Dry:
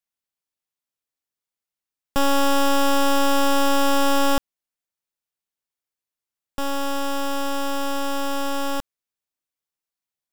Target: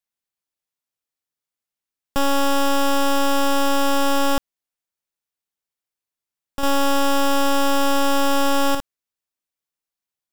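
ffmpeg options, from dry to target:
-filter_complex "[0:a]asettb=1/sr,asplit=3[s0][s1][s2];[s0]atrim=end=6.634[s3];[s1]atrim=start=6.63:end=8.75,asetpts=PTS-STARTPTS,afade=t=in:d=0.004:c=qsin,afade=t=out:st=2.116:d=0.004:c=qsin,acontrast=72[s4];[s2]atrim=start=8.746[s5];[s3][s4]acrossfade=d=0.004:c1=hsin:c2=qsin[s6];[s6][s5]acrossfade=d=0.004:c1=qsin:c2=hsin"

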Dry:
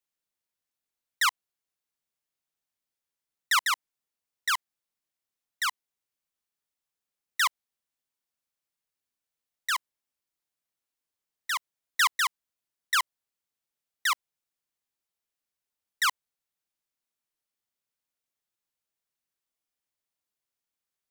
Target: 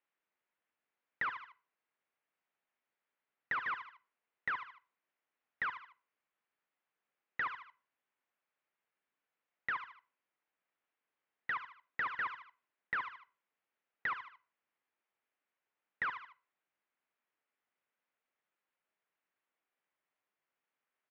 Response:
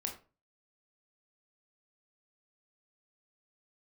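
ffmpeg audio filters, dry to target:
-filter_complex "[0:a]aemphasis=mode=production:type=bsi,aecho=1:1:76|152|228:0.112|0.0337|0.0101,aeval=exprs='(tanh(28.2*val(0)+0.75)-tanh(0.75))/28.2':c=same,highpass=130,asplit=2[s0][s1];[s1]aecho=1:1:2:0.65[s2];[1:a]atrim=start_sample=2205,adelay=11[s3];[s2][s3]afir=irnorm=-1:irlink=0,volume=0.119[s4];[s0][s4]amix=inputs=2:normalize=0,acompressor=threshold=0.00891:ratio=4,lowpass=f=2300:w=0.5412,lowpass=f=2300:w=1.3066,volume=3.35"

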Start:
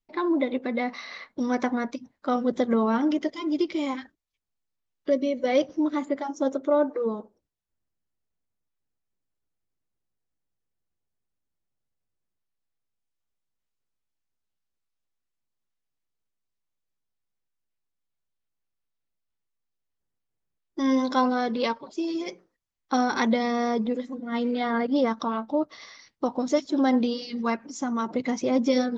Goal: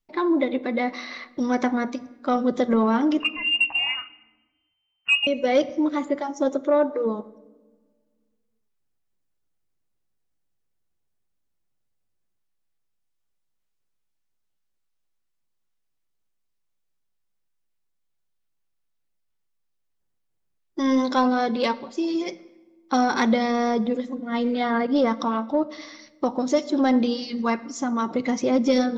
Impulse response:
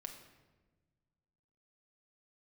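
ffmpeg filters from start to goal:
-filter_complex "[0:a]asettb=1/sr,asplit=3[s0][s1][s2];[s0]atrim=end=3.204[s3];[s1]atrim=start=3.2:end=5.27,asetpts=PTS-STARTPTS,afade=t=in:d=0.004:c=qsin,afade=t=out:st=2.066:d=0.004:c=qsin,lowpass=f=2600:t=q:w=0.5098,lowpass=f=2600:t=q:w=0.6013,lowpass=f=2600:t=q:w=0.9,lowpass=f=2600:t=q:w=2.563,afreqshift=-3100[s4];[s2]atrim=start=5.266[s5];[s3][s4]acrossfade=d=0.004:c1=hsin:c2=qsin[s6];[s6][s5]acrossfade=d=0.004:c1=qsin:c2=hsin,asplit=2[s7][s8];[1:a]atrim=start_sample=2205[s9];[s8][s9]afir=irnorm=-1:irlink=0,volume=0.596[s10];[s7][s10]amix=inputs=2:normalize=0,acontrast=70,volume=0.501"

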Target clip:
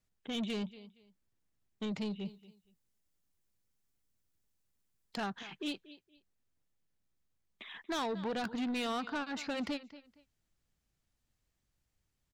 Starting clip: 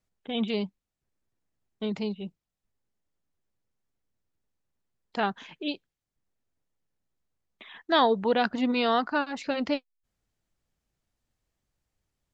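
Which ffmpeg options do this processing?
-filter_complex "[0:a]acompressor=threshold=0.0398:ratio=2,equalizer=f=610:w=0.66:g=-4.5,aecho=1:1:233|466:0.1|0.023,asoftclip=type=tanh:threshold=0.0266,asettb=1/sr,asplit=3[s0][s1][s2];[s0]atrim=end=2.254[s3];[s1]atrim=start=2.25:end=5.18,asetpts=PTS-STARTPTS,afade=t=in:d=0.004:c=qsin,afade=t=out:st=2.926:d=0.004:c=qsin,highshelf=f=5300:g=8.5[s4];[s2]atrim=start=5.176[s5];[s3][s4]acrossfade=d=0.004:c1=hsin:c2=qsin[s6];[s6][s5]acrossfade=d=0.004:c1=qsin:c2=hsin"

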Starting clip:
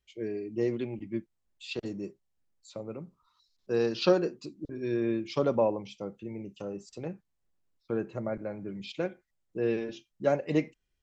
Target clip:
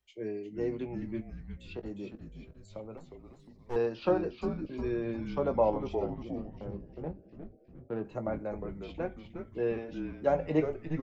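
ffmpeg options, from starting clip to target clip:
-filter_complex "[0:a]equalizer=f=820:t=o:w=0.89:g=7,acrossover=split=160|840|2800[s0][s1][s2][s3];[s3]acompressor=threshold=0.00126:ratio=6[s4];[s0][s1][s2][s4]amix=inputs=4:normalize=0,tremolo=f=0.85:d=0.33,asettb=1/sr,asplit=3[s5][s6][s7];[s5]atrim=end=6.064[s8];[s6]atrim=start=6.06:end=8.05,asetpts=PTS-STARTPTS,afade=t=in:d=0.004:c=qsin,afade=t=out:st=1.986:d=0.004:c=qsin,adynamicsmooth=sensitivity=1.5:basefreq=640[s9];[s7]atrim=start=8.046[s10];[s8][s9]acrossfade=d=0.004:c1=hsin:c2=qsin[s11];[s11][s10]acrossfade=d=0.004:c1=qsin:c2=hsin,asplit=2[s12][s13];[s13]adelay=19,volume=0.316[s14];[s12][s14]amix=inputs=2:normalize=0,asettb=1/sr,asplit=3[s15][s16][s17];[s15]atrim=end=2.974[s18];[s16]atrim=start=2.97:end=3.76,asetpts=PTS-STARTPTS,afade=t=in:d=0.004:c=qsin,afade=t=out:st=0.786:d=0.004:c=qsin,aeval=exprs='max(val(0),0)':c=same[s19];[s17]atrim=start=3.756[s20];[s18][s19]acrossfade=d=0.004:c1=hsin:c2=qsin[s21];[s21][s20]acrossfade=d=0.004:c1=qsin:c2=hsin,asplit=7[s22][s23][s24][s25][s26][s27][s28];[s23]adelay=357,afreqshift=-150,volume=0.447[s29];[s24]adelay=714,afreqshift=-300,volume=0.237[s30];[s25]adelay=1071,afreqshift=-450,volume=0.126[s31];[s26]adelay=1428,afreqshift=-600,volume=0.0668[s32];[s27]adelay=1785,afreqshift=-750,volume=0.0351[s33];[s28]adelay=2142,afreqshift=-900,volume=0.0186[s34];[s22][s29][s30][s31][s32][s33][s34]amix=inputs=7:normalize=0,volume=0.708"

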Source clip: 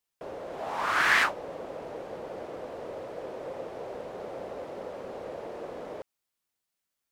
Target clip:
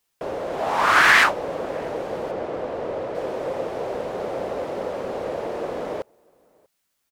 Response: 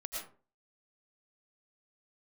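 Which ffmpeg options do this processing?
-filter_complex "[0:a]asettb=1/sr,asplit=3[s0][s1][s2];[s0]atrim=end=2.314[s3];[s1]atrim=start=2.31:end=3.15,asetpts=PTS-STARTPTS,afade=t=in:d=0.004:c=qsin,afade=t=out:st=0.836:d=0.004:c=qsin,lowpass=f=3400:p=1[s4];[s2]atrim=start=3.146[s5];[s3][s4]acrossfade=d=0.004:c1=hsin:c2=qsin[s6];[s6][s5]acrossfade=d=0.004:c1=qsin:c2=hsin,asplit=2[s7][s8];[s8]adelay=641.4,volume=0.0316,highshelf=f=4000:g=-14.4[s9];[s7][s9]amix=inputs=2:normalize=0,alimiter=level_in=5.01:limit=0.891:release=50:level=0:latency=1,volume=0.668"

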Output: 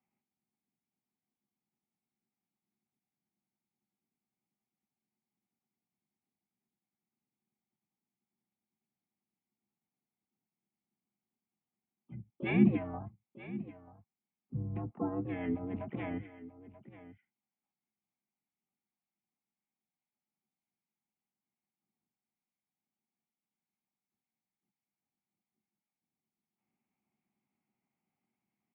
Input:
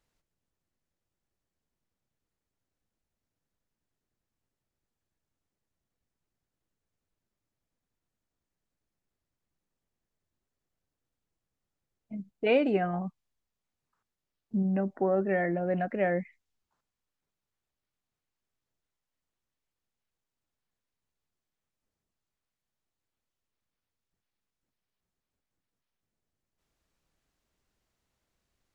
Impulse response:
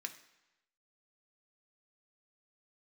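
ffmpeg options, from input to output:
-filter_complex "[0:a]asplit=3[s0][s1][s2];[s0]bandpass=f=300:t=q:w=8,volume=1[s3];[s1]bandpass=f=870:t=q:w=8,volume=0.501[s4];[s2]bandpass=f=2240:t=q:w=8,volume=0.355[s5];[s3][s4][s5]amix=inputs=3:normalize=0,asplit=2[s6][s7];[s7]aecho=0:1:935:0.168[s8];[s6][s8]amix=inputs=2:normalize=0,asplit=4[s9][s10][s11][s12];[s10]asetrate=33038,aresample=44100,atempo=1.33484,volume=0.251[s13];[s11]asetrate=52444,aresample=44100,atempo=0.840896,volume=0.282[s14];[s12]asetrate=66075,aresample=44100,atempo=0.66742,volume=0.355[s15];[s9][s13][s14][s15]amix=inputs=4:normalize=0,highpass=f=180:t=q:w=0.5412,highpass=f=180:t=q:w=1.307,lowpass=f=3000:t=q:w=0.5176,lowpass=f=3000:t=q:w=0.7071,lowpass=f=3000:t=q:w=1.932,afreqshift=-87,volume=2.24"

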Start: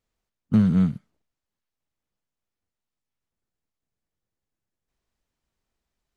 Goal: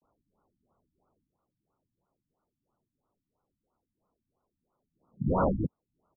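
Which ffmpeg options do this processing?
-filter_complex "[0:a]areverse,highpass=f=100:w=0.5412,highpass=f=100:w=1.3066,asplit=2[s0][s1];[s1]acompressor=threshold=0.0251:ratio=6,volume=1[s2];[s0][s2]amix=inputs=2:normalize=0,aeval=exprs='(mod(7.94*val(0)+1,2)-1)/7.94':c=same,aexciter=amount=5.2:drive=2.7:freq=2800,aresample=16000,asoftclip=type=hard:threshold=0.1,aresample=44100,acrusher=samples=8:mix=1:aa=0.000001,afftfilt=real='re*lt(b*sr/1024,290*pow(1500/290,0.5+0.5*sin(2*PI*3*pts/sr)))':imag='im*lt(b*sr/1024,290*pow(1500/290,0.5+0.5*sin(2*PI*3*pts/sr)))':win_size=1024:overlap=0.75"

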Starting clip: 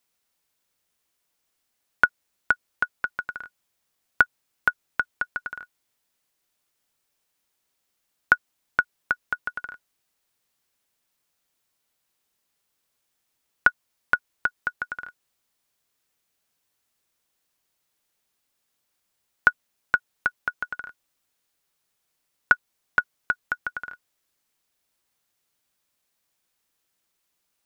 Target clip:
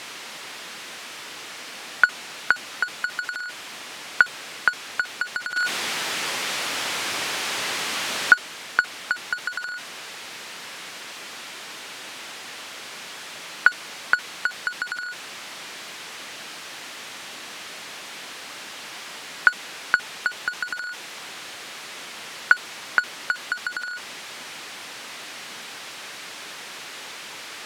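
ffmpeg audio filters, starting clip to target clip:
-filter_complex "[0:a]aeval=exprs='val(0)+0.5*0.075*sgn(val(0))':c=same,asettb=1/sr,asplit=3[s0][s1][s2];[s0]atrim=end=5.564[s3];[s1]atrim=start=5.56:end=8.34,asetpts=PTS-STARTPTS,afade=t=in:d=0.004:c=qsin,afade=t=out:st=2.776:d=0.004:c=qsin,acontrast=51[s4];[s2]atrim=start=8.336[s5];[s3][s4]acrossfade=d=0.004:c1=hsin:c2=qsin[s6];[s6][s5]acrossfade=d=0.004:c1=qsin:c2=hsin,crystalizer=i=9:c=0,aeval=exprs='0.891*(cos(1*acos(clip(val(0)/0.891,-1,1)))-cos(1*PI/2))+0.316*(cos(3*acos(clip(val(0)/0.891,-1,1)))-cos(3*PI/2))+0.158*(cos(5*acos(clip(val(0)/0.891,-1,1)))-cos(5*PI/2))+0.0355*(cos(6*acos(clip(val(0)/0.891,-1,1)))-cos(6*PI/2))+0.0794*(cos(7*acos(clip(val(0)/0.891,-1,1)))-cos(7*PI/2))':c=same,highpass=180,lowpass=2300,volume=0.562"

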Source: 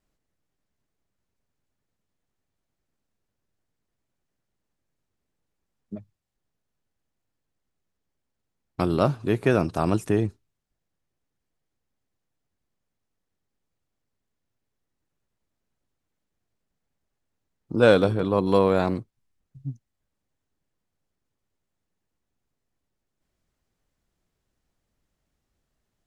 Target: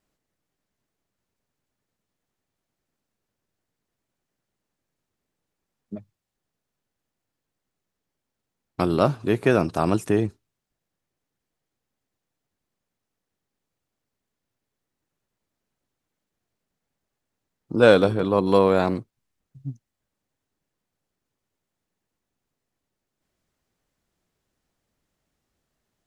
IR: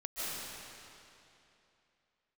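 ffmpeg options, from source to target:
-af "lowshelf=f=87:g=-9,volume=1.33"

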